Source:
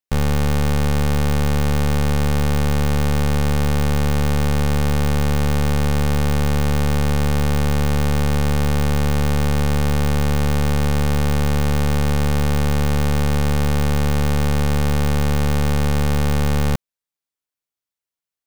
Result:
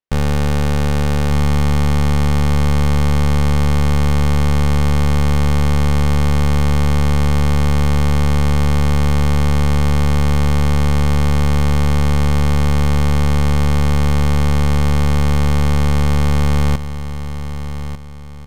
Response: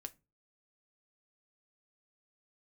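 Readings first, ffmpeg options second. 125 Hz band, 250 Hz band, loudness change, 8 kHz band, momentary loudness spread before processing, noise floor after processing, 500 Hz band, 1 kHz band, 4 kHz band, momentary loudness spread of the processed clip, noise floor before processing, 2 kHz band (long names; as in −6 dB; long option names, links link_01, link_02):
+4.0 dB, +2.5 dB, +3.5 dB, 0.0 dB, 0 LU, −23 dBFS, +0.5 dB, +2.5 dB, +2.0 dB, 2 LU, below −85 dBFS, +1.5 dB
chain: -af "adynamicsmooth=sensitivity=3:basefreq=3600,aecho=1:1:1196|2392|3588|4784:0.282|0.101|0.0365|0.0131,volume=2dB"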